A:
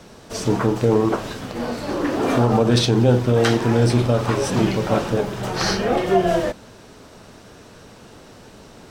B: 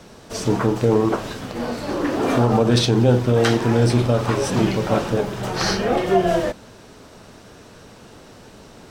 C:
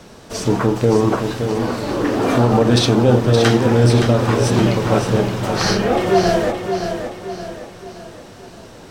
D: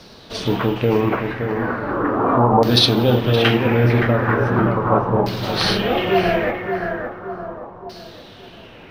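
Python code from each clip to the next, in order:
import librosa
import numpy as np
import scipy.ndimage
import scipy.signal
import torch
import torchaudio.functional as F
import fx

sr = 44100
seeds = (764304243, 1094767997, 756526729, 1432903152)

y1 = x
y2 = fx.echo_feedback(y1, sr, ms=570, feedback_pct=44, wet_db=-7.0)
y2 = F.gain(torch.from_numpy(y2), 2.5).numpy()
y3 = (np.kron(scipy.signal.resample_poly(y2, 1, 3), np.eye(3)[0]) * 3)[:len(y2)]
y3 = fx.filter_lfo_lowpass(y3, sr, shape='saw_down', hz=0.38, low_hz=920.0, high_hz=4700.0, q=3.5)
y3 = F.gain(torch.from_numpy(y3), -3.0).numpy()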